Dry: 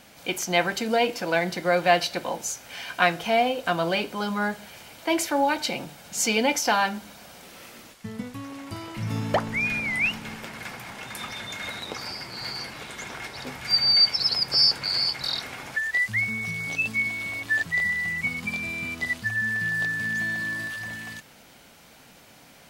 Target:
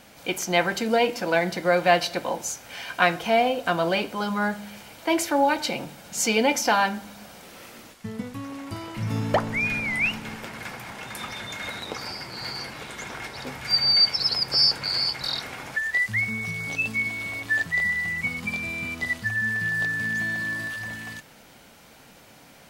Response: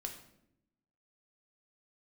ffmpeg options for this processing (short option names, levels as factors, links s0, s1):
-filter_complex "[0:a]asplit=2[s0][s1];[1:a]atrim=start_sample=2205,lowpass=2400[s2];[s1][s2]afir=irnorm=-1:irlink=0,volume=0.335[s3];[s0][s3]amix=inputs=2:normalize=0"